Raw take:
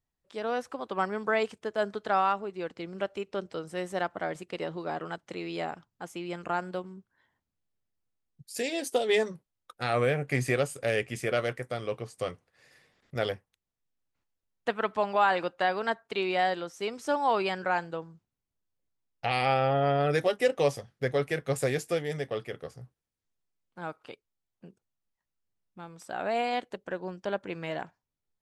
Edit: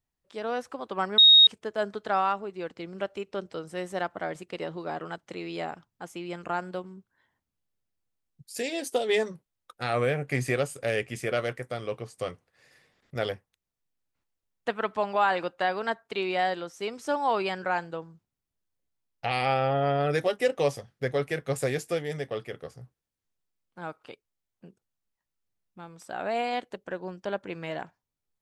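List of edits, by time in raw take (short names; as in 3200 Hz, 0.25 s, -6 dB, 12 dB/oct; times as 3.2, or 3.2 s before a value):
1.18–1.47 bleep 3750 Hz -11.5 dBFS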